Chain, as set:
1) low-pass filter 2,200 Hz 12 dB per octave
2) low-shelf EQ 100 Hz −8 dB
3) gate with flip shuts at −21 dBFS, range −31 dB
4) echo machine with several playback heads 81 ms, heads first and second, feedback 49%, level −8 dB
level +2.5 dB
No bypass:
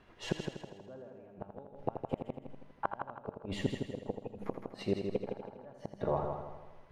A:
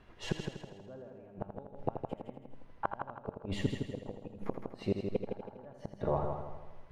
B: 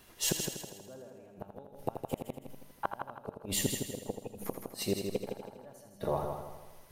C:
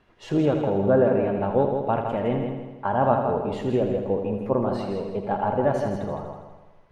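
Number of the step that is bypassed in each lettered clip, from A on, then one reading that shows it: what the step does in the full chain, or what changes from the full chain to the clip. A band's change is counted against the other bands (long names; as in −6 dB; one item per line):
2, 125 Hz band +2.5 dB
1, 8 kHz band +21.5 dB
3, change in momentary loudness spread −5 LU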